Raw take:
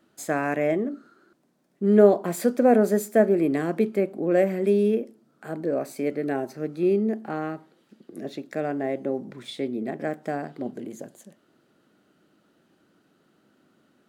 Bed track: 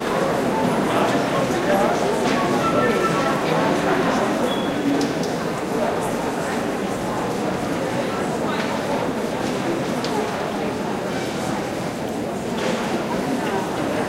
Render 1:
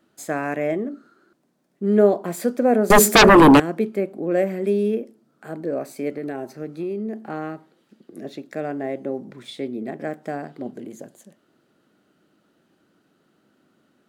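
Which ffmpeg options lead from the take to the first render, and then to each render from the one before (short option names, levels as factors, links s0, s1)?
-filter_complex "[0:a]asettb=1/sr,asplit=3[s0][s1][s2];[s0]atrim=end=2.904[s3];[s1]atrim=start=2.9:end=3.6,asetpts=PTS-STARTPTS,afade=t=in:d=0.004:c=qsin,afade=t=out:st=0.696:d=0.004:c=qsin,aeval=exprs='0.473*sin(PI/2*6.31*val(0)/0.473)':c=same[s4];[s2]atrim=start=3.596[s5];[s3][s4]acrossfade=d=0.004:c1=hsin:c2=qsin[s6];[s6][s5]acrossfade=d=0.004:c1=qsin:c2=hsin,asettb=1/sr,asplit=3[s7][s8][s9];[s7]atrim=end=6.114[s10];[s8]atrim=start=6.11:end=7.25,asetpts=PTS-STARTPTS,afade=t=in:d=0.004:c=qsin,afade=t=out:st=1.136:d=0.004:c=qsin,acompressor=threshold=0.0631:ratio=6:attack=3.2:release=140:knee=1:detection=peak[s11];[s9]atrim=start=7.246[s12];[s10][s11]acrossfade=d=0.004:c1=hsin:c2=qsin[s13];[s13][s12]acrossfade=d=0.004:c1=qsin:c2=hsin"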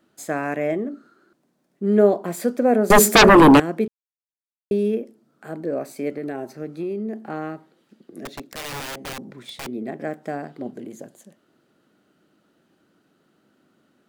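-filter_complex "[0:a]asettb=1/sr,asplit=3[s0][s1][s2];[s0]atrim=end=8.254[s3];[s1]atrim=start=8.25:end=9.67,asetpts=PTS-STARTPTS,afade=t=in:d=0.004:c=qsin,afade=t=out:st=1.416:d=0.004:c=qsin,aeval=exprs='(mod(22.4*val(0)+1,2)-1)/22.4':c=same[s4];[s2]atrim=start=9.666[s5];[s3][s4]acrossfade=d=0.004:c1=hsin:c2=qsin[s6];[s6][s5]acrossfade=d=0.004:c1=qsin:c2=hsin,asplit=3[s7][s8][s9];[s7]atrim=end=3.88,asetpts=PTS-STARTPTS,afade=t=out:st=3.876:d=0.004:c=hsin[s10];[s8]atrim=start=3.88:end=4.71,asetpts=PTS-STARTPTS,volume=0[s11];[s9]atrim=start=4.71,asetpts=PTS-STARTPTS,afade=t=in:d=0.004:c=hsin[s12];[s10][s11][s12]concat=n=3:v=0:a=1"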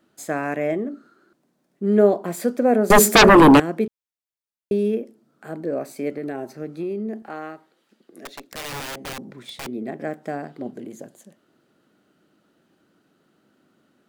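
-filter_complex "[0:a]asettb=1/sr,asplit=3[s0][s1][s2];[s0]atrim=end=7.224[s3];[s1]atrim=start=7.22:end=8.52,asetpts=PTS-STARTPTS,afade=t=in:d=0.004:c=qsin,afade=t=out:st=1.296:d=0.004:c=qsin,equalizer=f=84:w=0.31:g=-14[s4];[s2]atrim=start=8.516[s5];[s3][s4]acrossfade=d=0.004:c1=hsin:c2=qsin[s6];[s6][s5]acrossfade=d=0.004:c1=qsin:c2=hsin"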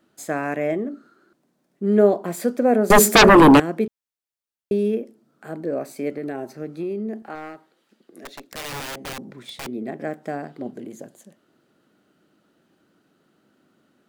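-filter_complex "[0:a]asettb=1/sr,asplit=3[s0][s1][s2];[s0]atrim=end=7.354[s3];[s1]atrim=start=7.35:end=8.44,asetpts=PTS-STARTPTS,afade=t=in:d=0.004:c=qsin,afade=t=out:st=1.086:d=0.004:c=qsin,aeval=exprs='clip(val(0),-1,0.0211)':c=same[s4];[s2]atrim=start=8.436[s5];[s3][s4]acrossfade=d=0.004:c1=hsin:c2=qsin[s6];[s6][s5]acrossfade=d=0.004:c1=qsin:c2=hsin"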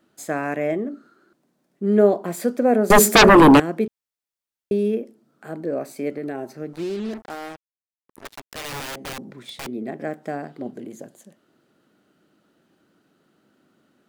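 -filter_complex "[0:a]asettb=1/sr,asplit=3[s0][s1][s2];[s0]atrim=end=6.734[s3];[s1]atrim=start=6.73:end=8.65,asetpts=PTS-STARTPTS,afade=t=in:d=0.004:c=qsin,afade=t=out:st=1.916:d=0.004:c=qsin,acrusher=bits=5:mix=0:aa=0.5[s4];[s2]atrim=start=8.646[s5];[s3][s4]acrossfade=d=0.004:c1=hsin:c2=qsin[s6];[s6][s5]acrossfade=d=0.004:c1=qsin:c2=hsin"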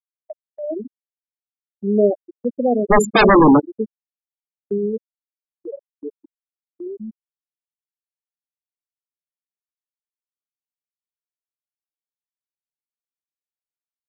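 -af "afftfilt=real='re*gte(hypot(re,im),0.501)':imag='im*gte(hypot(re,im),0.501)':win_size=1024:overlap=0.75,agate=range=0.141:threshold=0.00708:ratio=16:detection=peak"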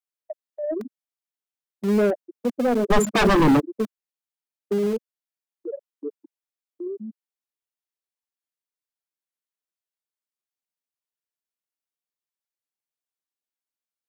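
-filter_complex "[0:a]acrossover=split=180[s0][s1];[s0]acrusher=bits=5:mix=0:aa=0.000001[s2];[s1]asoftclip=type=tanh:threshold=0.15[s3];[s2][s3]amix=inputs=2:normalize=0"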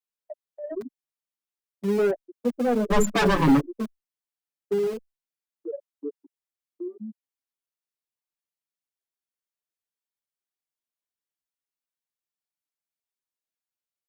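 -filter_complex "[0:a]asplit=2[s0][s1];[s1]adelay=6.2,afreqshift=-0.73[s2];[s0][s2]amix=inputs=2:normalize=1"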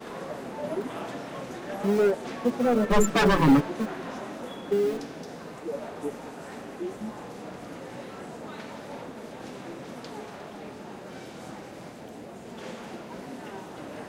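-filter_complex "[1:a]volume=0.141[s0];[0:a][s0]amix=inputs=2:normalize=0"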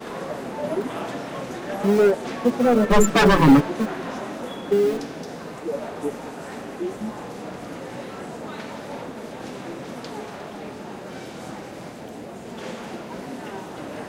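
-af "volume=1.88,alimiter=limit=0.708:level=0:latency=1"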